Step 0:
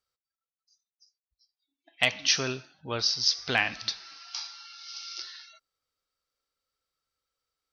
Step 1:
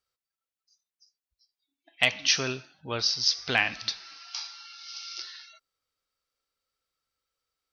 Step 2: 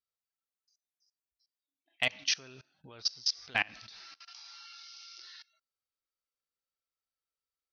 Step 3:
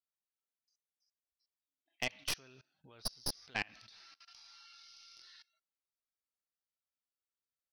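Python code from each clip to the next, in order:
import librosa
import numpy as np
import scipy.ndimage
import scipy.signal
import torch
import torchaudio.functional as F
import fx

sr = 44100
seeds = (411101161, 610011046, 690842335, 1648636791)

y1 = fx.peak_eq(x, sr, hz=2500.0, db=2.0, octaves=0.77)
y2 = fx.level_steps(y1, sr, step_db=24)
y2 = y2 * librosa.db_to_amplitude(-3.0)
y3 = fx.tracing_dist(y2, sr, depth_ms=0.078)
y3 = y3 * librosa.db_to_amplitude(-7.5)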